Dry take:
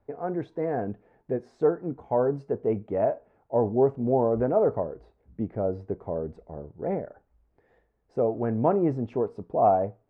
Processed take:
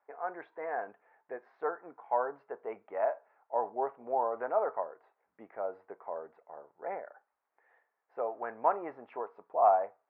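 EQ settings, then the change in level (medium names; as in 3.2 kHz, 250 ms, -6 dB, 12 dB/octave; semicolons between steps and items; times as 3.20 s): Butterworth band-pass 1.4 kHz, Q 0.93; distance through air 120 m; +3.5 dB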